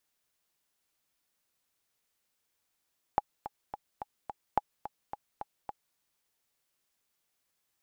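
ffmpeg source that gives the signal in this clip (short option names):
-f lavfi -i "aevalsrc='pow(10,(-11.5-13*gte(mod(t,5*60/215),60/215))/20)*sin(2*PI*831*mod(t,60/215))*exp(-6.91*mod(t,60/215)/0.03)':d=2.79:s=44100"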